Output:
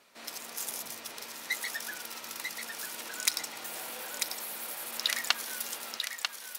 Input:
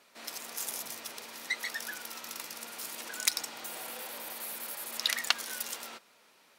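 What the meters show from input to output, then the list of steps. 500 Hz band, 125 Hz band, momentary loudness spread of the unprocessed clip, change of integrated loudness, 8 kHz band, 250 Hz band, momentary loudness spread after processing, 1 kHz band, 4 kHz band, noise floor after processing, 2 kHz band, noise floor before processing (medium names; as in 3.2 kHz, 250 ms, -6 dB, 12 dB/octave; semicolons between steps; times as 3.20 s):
+0.5 dB, +1.5 dB, 10 LU, +1.0 dB, +1.0 dB, +0.5 dB, 9 LU, +1.0 dB, +1.0 dB, -47 dBFS, +1.0 dB, -63 dBFS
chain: bass shelf 110 Hz +4.5 dB; on a send: thinning echo 943 ms, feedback 34%, high-pass 640 Hz, level -5 dB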